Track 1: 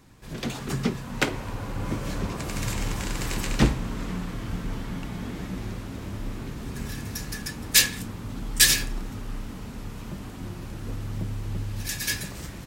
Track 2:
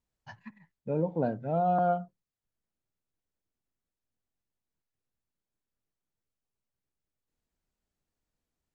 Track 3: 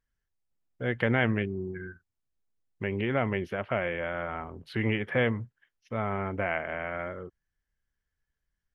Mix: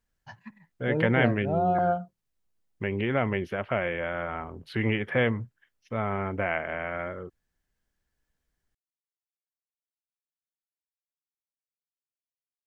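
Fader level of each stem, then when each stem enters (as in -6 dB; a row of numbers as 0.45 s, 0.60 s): mute, +1.5 dB, +1.5 dB; mute, 0.00 s, 0.00 s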